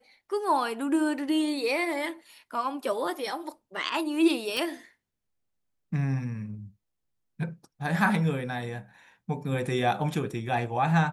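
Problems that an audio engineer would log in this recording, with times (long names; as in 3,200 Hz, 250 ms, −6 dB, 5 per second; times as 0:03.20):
0:04.57: click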